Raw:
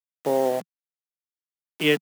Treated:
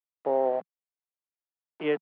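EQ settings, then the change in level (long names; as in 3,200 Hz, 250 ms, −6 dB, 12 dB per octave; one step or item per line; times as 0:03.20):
resonant band-pass 750 Hz, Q 0.96
high-frequency loss of the air 330 metres
0.0 dB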